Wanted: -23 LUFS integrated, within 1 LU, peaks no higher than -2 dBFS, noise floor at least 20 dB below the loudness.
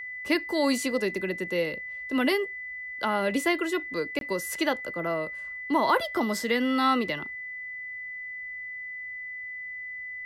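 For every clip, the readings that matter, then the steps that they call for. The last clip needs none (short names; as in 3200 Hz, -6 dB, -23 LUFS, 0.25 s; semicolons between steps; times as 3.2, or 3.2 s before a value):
dropouts 1; longest dropout 22 ms; steady tone 2000 Hz; tone level -35 dBFS; loudness -28.5 LUFS; peak -11.5 dBFS; loudness target -23.0 LUFS
-> interpolate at 4.19, 22 ms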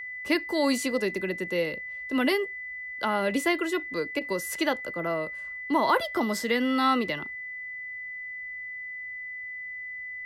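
dropouts 0; steady tone 2000 Hz; tone level -35 dBFS
-> notch 2000 Hz, Q 30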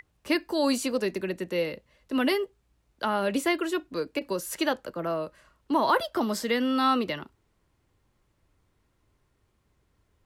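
steady tone none; loudness -28.0 LUFS; peak -11.5 dBFS; loudness target -23.0 LUFS
-> gain +5 dB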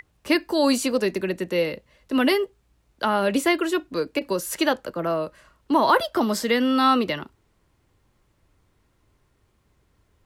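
loudness -23.0 LUFS; peak -6.5 dBFS; noise floor -67 dBFS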